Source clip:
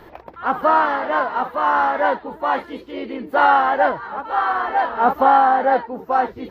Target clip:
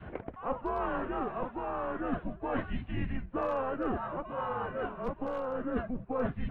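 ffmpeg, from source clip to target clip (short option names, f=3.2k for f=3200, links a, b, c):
-af "lowshelf=f=250:g=9,highpass=f=250:t=q:w=0.5412,highpass=f=250:t=q:w=1.307,lowpass=f=3.2k:t=q:w=0.5176,lowpass=f=3.2k:t=q:w=0.7071,lowpass=f=3.2k:t=q:w=1.932,afreqshift=-260,asoftclip=type=hard:threshold=-5dB,areverse,acompressor=threshold=-26dB:ratio=12,areverse,adynamicequalizer=threshold=0.00794:dfrequency=630:dqfactor=0.95:tfrequency=630:tqfactor=0.95:attack=5:release=100:ratio=0.375:range=3:mode=cutabove:tftype=bell,volume=-1.5dB"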